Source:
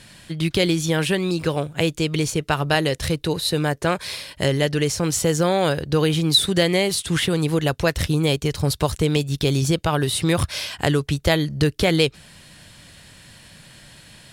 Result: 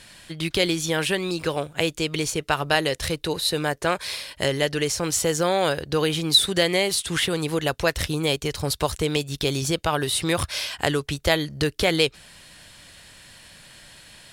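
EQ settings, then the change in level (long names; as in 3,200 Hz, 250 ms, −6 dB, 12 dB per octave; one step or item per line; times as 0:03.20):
parametric band 140 Hz −8 dB 2.4 octaves
0.0 dB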